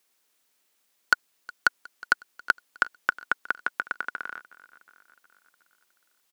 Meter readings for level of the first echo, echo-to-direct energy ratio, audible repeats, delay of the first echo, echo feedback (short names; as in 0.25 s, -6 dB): -22.0 dB, -20.0 dB, 3, 0.364 s, 60%